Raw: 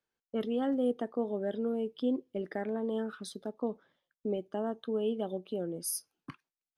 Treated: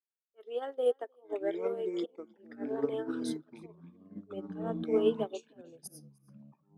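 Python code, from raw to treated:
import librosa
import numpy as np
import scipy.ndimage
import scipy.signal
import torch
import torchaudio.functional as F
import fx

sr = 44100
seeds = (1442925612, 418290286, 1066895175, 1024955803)

p1 = scipy.signal.sosfilt(scipy.signal.cheby1(4, 1.0, 380.0, 'highpass', fs=sr, output='sos'), x)
p2 = fx.auto_swell(p1, sr, attack_ms=154.0)
p3 = fx.echo_pitch(p2, sr, ms=749, semitones=-6, count=3, db_per_echo=-3.0)
p4 = p3 + fx.echo_single(p3, sr, ms=308, db=-15.0, dry=0)
p5 = fx.upward_expand(p4, sr, threshold_db=-47.0, expansion=2.5)
y = F.gain(torch.from_numpy(p5), 7.5).numpy()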